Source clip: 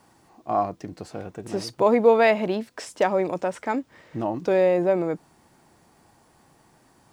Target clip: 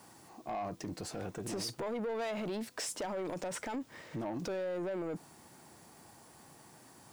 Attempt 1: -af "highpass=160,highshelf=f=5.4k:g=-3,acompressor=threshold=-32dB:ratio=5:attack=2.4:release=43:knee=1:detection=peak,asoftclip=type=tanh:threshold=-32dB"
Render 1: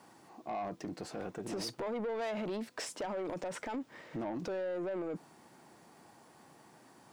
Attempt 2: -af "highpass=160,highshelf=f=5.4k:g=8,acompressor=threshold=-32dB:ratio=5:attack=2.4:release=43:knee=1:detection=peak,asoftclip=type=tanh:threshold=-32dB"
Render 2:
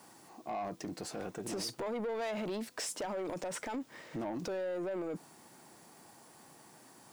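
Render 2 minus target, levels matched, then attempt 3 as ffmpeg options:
125 Hz band -3.0 dB
-af "highpass=76,highshelf=f=5.4k:g=8,acompressor=threshold=-32dB:ratio=5:attack=2.4:release=43:knee=1:detection=peak,asoftclip=type=tanh:threshold=-32dB"

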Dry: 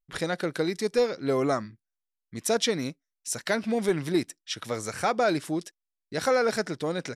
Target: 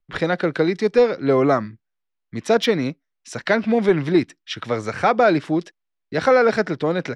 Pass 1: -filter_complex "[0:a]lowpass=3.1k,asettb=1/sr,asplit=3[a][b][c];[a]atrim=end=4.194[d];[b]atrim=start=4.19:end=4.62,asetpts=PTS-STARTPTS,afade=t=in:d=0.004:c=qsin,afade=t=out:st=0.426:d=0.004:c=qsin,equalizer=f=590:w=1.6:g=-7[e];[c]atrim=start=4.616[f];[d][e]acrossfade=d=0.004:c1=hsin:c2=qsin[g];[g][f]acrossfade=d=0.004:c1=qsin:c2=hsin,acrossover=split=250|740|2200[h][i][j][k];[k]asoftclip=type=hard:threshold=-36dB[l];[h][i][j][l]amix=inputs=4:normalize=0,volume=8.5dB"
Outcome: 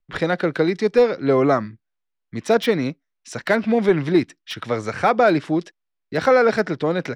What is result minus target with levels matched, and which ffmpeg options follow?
hard clip: distortion +13 dB
-filter_complex "[0:a]lowpass=3.1k,asettb=1/sr,asplit=3[a][b][c];[a]atrim=end=4.194[d];[b]atrim=start=4.19:end=4.62,asetpts=PTS-STARTPTS,afade=t=in:d=0.004:c=qsin,afade=t=out:st=0.426:d=0.004:c=qsin,equalizer=f=590:w=1.6:g=-7[e];[c]atrim=start=4.616[f];[d][e]acrossfade=d=0.004:c1=hsin:c2=qsin[g];[g][f]acrossfade=d=0.004:c1=qsin:c2=hsin,acrossover=split=250|740|2200[h][i][j][k];[k]asoftclip=type=hard:threshold=-26.5dB[l];[h][i][j][l]amix=inputs=4:normalize=0,volume=8.5dB"

